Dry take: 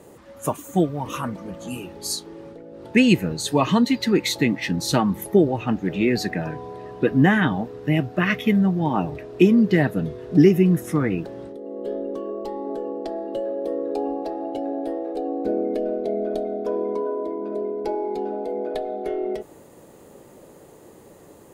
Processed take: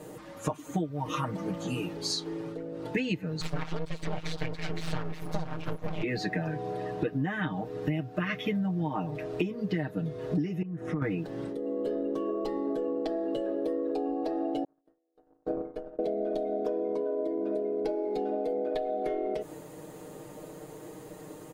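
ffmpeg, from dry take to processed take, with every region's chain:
-filter_complex "[0:a]asettb=1/sr,asplit=3[s0][s1][s2];[s0]atrim=end=3.414[s3];[s1]atrim=start=3.41:end=6.03,asetpts=PTS-STARTPTS,afade=t=in:d=0.004:c=qsin,afade=t=out:st=2.616:d=0.004:c=qsin,aecho=1:1:512:0.335,atrim=end_sample=115542,aeval=exprs='val(0)*sin(2*PI*82*n/s)':c=same,aeval=exprs='abs(val(0))':c=same[s4];[s2]atrim=start=6.026[s5];[s3][s4]acrossfade=d=0.004:c1=hsin:c2=qsin[s6];[s6][s5]acrossfade=d=0.004:c1=qsin:c2=hsin,asettb=1/sr,asplit=3[s7][s8][s9];[s7]atrim=end=10.624[s10];[s8]atrim=start=10.62:end=11.02,asetpts=PTS-STARTPTS,afade=t=in:d=0.004:c=qsin,afade=t=out:st=0.396:d=0.004:c=qsin,lowpass=2100,acompressor=threshold=0.0398:ratio=6:attack=3.2:release=140:knee=1:detection=peak[s11];[s9]atrim=start=11.016[s12];[s10][s11]acrossfade=d=0.004:c1=hsin:c2=qsin[s13];[s13][s12]acrossfade=d=0.004:c1=qsin:c2=hsin,asettb=1/sr,asplit=3[s14][s15][s16];[s14]atrim=end=14.644[s17];[s15]atrim=start=14.64:end=15.99,asetpts=PTS-STARTPTS,afade=t=in:d=0.004:c=qsin,afade=t=out:st=1.346:d=0.004:c=qsin,agate=range=0.00224:threshold=0.0794:ratio=16:release=100:detection=peak,asubboost=boost=10.5:cutoff=86[s18];[s16]atrim=start=15.986[s19];[s17][s18]acrossfade=d=0.004:c1=hsin:c2=qsin[s20];[s20][s19]acrossfade=d=0.004:c1=qsin:c2=hsin,acrossover=split=5900[s21][s22];[s22]acompressor=threshold=0.00141:ratio=4:attack=1:release=60[s23];[s21][s23]amix=inputs=2:normalize=0,aecho=1:1:6.5:0.9,acompressor=threshold=0.0447:ratio=12"

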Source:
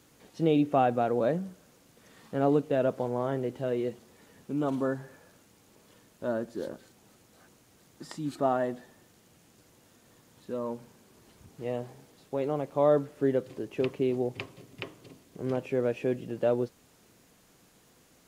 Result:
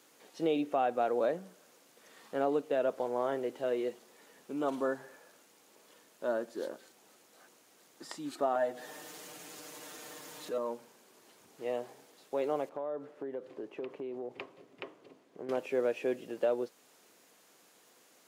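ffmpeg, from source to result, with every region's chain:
-filter_complex "[0:a]asettb=1/sr,asplit=3[s0][s1][s2];[s0]atrim=end=8.554[s3];[s1]atrim=start=8.55:end=10.58,asetpts=PTS-STARTPTS,afade=t=in:d=0.004:c=qsin,afade=t=out:st=2.026:d=0.004:c=qsin,aecho=1:1:6.6:0.92,atrim=end_sample=89523,acompressor=mode=upward:threshold=0.0224:ratio=2.5:attack=3.2:release=140:knee=2.83:detection=peak[s4];[s2]atrim=start=10.576[s5];[s3][s4]acrossfade=d=0.004:c1=hsin:c2=qsin[s6];[s6][s5]acrossfade=d=0.004:c1=qsin:c2=hsin,asettb=1/sr,asplit=3[s7][s8][s9];[s7]atrim=end=12.694[s10];[s8]atrim=start=12.69:end=15.49,asetpts=PTS-STARTPTS,afade=t=in:d=0.004:c=qsin,afade=t=out:st=2.796:d=0.004:c=qsin,lowpass=f=1300:p=1,acompressor=threshold=0.0282:ratio=12:attack=3.2:release=140:knee=1:detection=peak[s11];[s9]atrim=start=15.486[s12];[s10][s11]acrossfade=d=0.004:c1=hsin:c2=qsin[s13];[s13][s12]acrossfade=d=0.004:c1=qsin:c2=hsin,highpass=380,alimiter=limit=0.1:level=0:latency=1:release=379"

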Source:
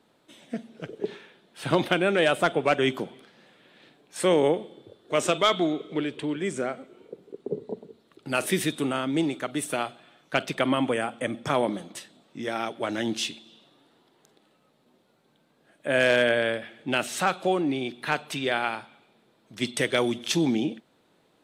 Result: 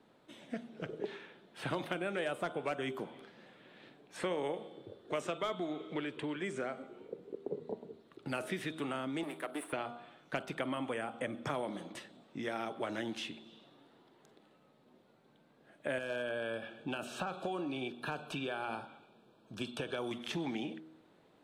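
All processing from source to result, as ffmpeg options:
-filter_complex "[0:a]asettb=1/sr,asplit=3[s0][s1][s2];[s0]atrim=end=9.234[s3];[s1]atrim=start=9.23:end=9.73,asetpts=PTS-STARTPTS,afade=t=in:d=0.004:c=qsin,afade=t=out:st=0.496:d=0.004:c=qsin,aeval=exprs='if(lt(val(0),0),0.251*val(0),val(0))':c=same,highpass=f=250:w=0.5412,highpass=f=250:w=1.3066,highshelf=f=7900:t=q:w=3:g=10[s4];[s2]atrim=start=9.726[s5];[s3][s4]acrossfade=d=0.004:c1=hsin:c2=qsin[s6];[s6][s5]acrossfade=d=0.004:c1=qsin:c2=hsin,asettb=1/sr,asplit=3[s7][s8][s9];[s7]atrim=end=15.984[s10];[s8]atrim=start=15.98:end=20.11,asetpts=PTS-STARTPTS,afade=t=in:d=0.004:c=qsin,afade=t=out:st=4.126:d=0.004:c=qsin,acompressor=threshold=0.0631:ratio=5:attack=3.2:release=140:knee=1:detection=peak,asuperstop=centerf=2000:order=8:qfactor=3.6[s11];[s9]atrim=start=20.106[s12];[s10][s11]acrossfade=d=0.004:c1=hsin:c2=qsin[s13];[s13][s12]acrossfade=d=0.004:c1=qsin:c2=hsin,highshelf=f=3500:g=-10,bandreject=f=79.45:t=h:w=4,bandreject=f=158.9:t=h:w=4,bandreject=f=238.35:t=h:w=4,bandreject=f=317.8:t=h:w=4,bandreject=f=397.25:t=h:w=4,bandreject=f=476.7:t=h:w=4,bandreject=f=556.15:t=h:w=4,bandreject=f=635.6:t=h:w=4,bandreject=f=715.05:t=h:w=4,bandreject=f=794.5:t=h:w=4,bandreject=f=873.95:t=h:w=4,bandreject=f=953.4:t=h:w=4,bandreject=f=1032.85:t=h:w=4,bandreject=f=1112.3:t=h:w=4,bandreject=f=1191.75:t=h:w=4,bandreject=f=1271.2:t=h:w=4,bandreject=f=1350.65:t=h:w=4,bandreject=f=1430.1:t=h:w=4,bandreject=f=1509.55:t=h:w=4,acrossover=split=750|3200|7300[s14][s15][s16][s17];[s14]acompressor=threshold=0.0112:ratio=4[s18];[s15]acompressor=threshold=0.00891:ratio=4[s19];[s16]acompressor=threshold=0.00158:ratio=4[s20];[s17]acompressor=threshold=0.001:ratio=4[s21];[s18][s19][s20][s21]amix=inputs=4:normalize=0"

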